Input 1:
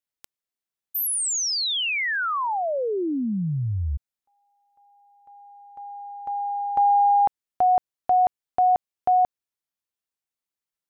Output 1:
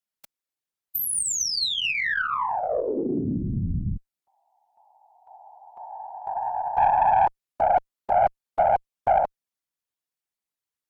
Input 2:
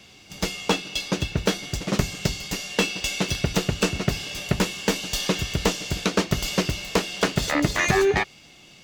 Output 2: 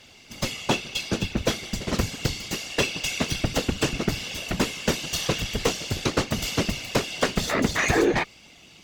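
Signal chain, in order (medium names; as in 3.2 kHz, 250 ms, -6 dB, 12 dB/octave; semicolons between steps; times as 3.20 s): whisper effect; valve stage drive 9 dB, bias 0.3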